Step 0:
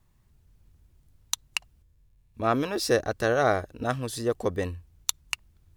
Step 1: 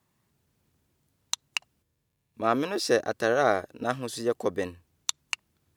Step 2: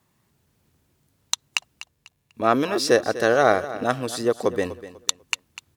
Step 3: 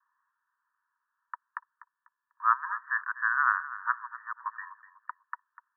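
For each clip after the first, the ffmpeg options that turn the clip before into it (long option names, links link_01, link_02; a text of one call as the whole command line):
ffmpeg -i in.wav -filter_complex "[0:a]highpass=180,acrossover=split=9100[link_01][link_02];[link_02]acompressor=threshold=-46dB:ratio=4:attack=1:release=60[link_03];[link_01][link_03]amix=inputs=2:normalize=0" out.wav
ffmpeg -i in.wav -af "aecho=1:1:247|494|741:0.178|0.0533|0.016,volume=5.5dB" out.wav
ffmpeg -i in.wav -af "asuperpass=centerf=1300:order=20:qfactor=1.5" out.wav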